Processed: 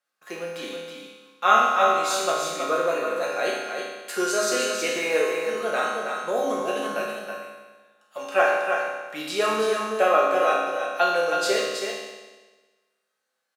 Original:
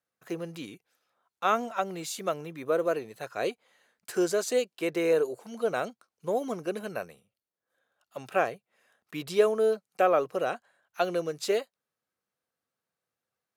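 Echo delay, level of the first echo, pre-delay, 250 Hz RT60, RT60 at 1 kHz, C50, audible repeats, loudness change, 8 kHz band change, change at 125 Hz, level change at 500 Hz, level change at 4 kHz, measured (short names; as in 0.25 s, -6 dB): 0.322 s, -5.5 dB, 4 ms, 1.3 s, 1.3 s, -1.5 dB, 1, +6.0 dB, +9.5 dB, n/a, +4.0 dB, +11.0 dB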